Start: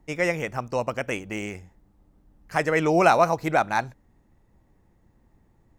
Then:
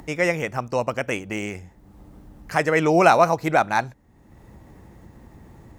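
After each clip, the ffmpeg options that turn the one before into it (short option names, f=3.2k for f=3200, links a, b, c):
-filter_complex "[0:a]highpass=47,asplit=2[a][b];[b]acompressor=mode=upward:threshold=-28dB:ratio=2.5,volume=1.5dB[c];[a][c]amix=inputs=2:normalize=0,volume=-4dB"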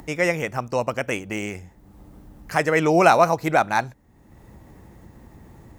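-af "highshelf=f=10k:g=5"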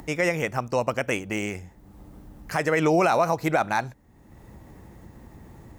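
-af "alimiter=limit=-11.5dB:level=0:latency=1:release=71"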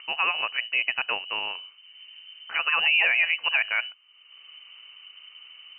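-af "lowpass=f=2.6k:t=q:w=0.5098,lowpass=f=2.6k:t=q:w=0.6013,lowpass=f=2.6k:t=q:w=0.9,lowpass=f=2.6k:t=q:w=2.563,afreqshift=-3100,volume=-1.5dB"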